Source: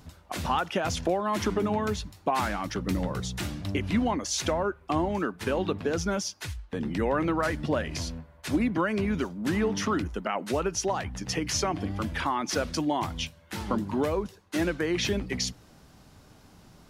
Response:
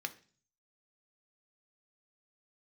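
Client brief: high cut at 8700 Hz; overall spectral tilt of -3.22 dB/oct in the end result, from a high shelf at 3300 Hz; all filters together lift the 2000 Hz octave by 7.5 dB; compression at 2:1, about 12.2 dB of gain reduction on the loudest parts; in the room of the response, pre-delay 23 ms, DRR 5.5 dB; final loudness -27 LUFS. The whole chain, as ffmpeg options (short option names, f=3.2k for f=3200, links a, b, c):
-filter_complex "[0:a]lowpass=8.7k,equalizer=f=2k:t=o:g=7,highshelf=f=3.3k:g=8.5,acompressor=threshold=-43dB:ratio=2,asplit=2[a][b];[1:a]atrim=start_sample=2205,adelay=23[c];[b][c]afir=irnorm=-1:irlink=0,volume=-6.5dB[d];[a][d]amix=inputs=2:normalize=0,volume=9.5dB"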